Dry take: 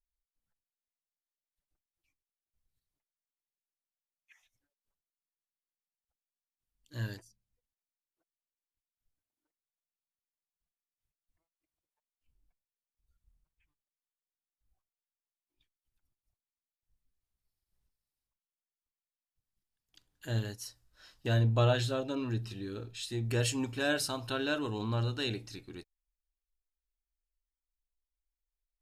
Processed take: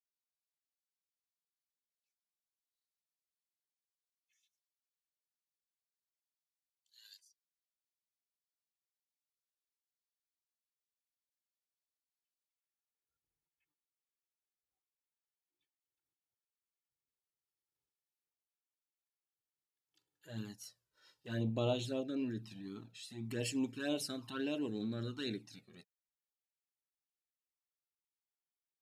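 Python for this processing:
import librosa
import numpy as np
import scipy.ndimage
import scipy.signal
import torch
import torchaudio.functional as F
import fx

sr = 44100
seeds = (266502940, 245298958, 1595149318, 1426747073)

y = fx.transient(x, sr, attack_db=-8, sustain_db=-2)
y = fx.filter_sweep_highpass(y, sr, from_hz=4000.0, to_hz=200.0, start_s=12.48, end_s=13.12, q=1.8)
y = fx.env_flanger(y, sr, rest_ms=2.3, full_db=-27.0)
y = y * librosa.db_to_amplitude(-4.0)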